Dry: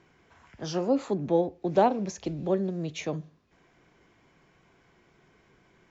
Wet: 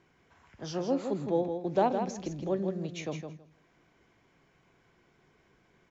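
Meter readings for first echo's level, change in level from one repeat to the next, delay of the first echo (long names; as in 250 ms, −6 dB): −7.0 dB, −16.5 dB, 162 ms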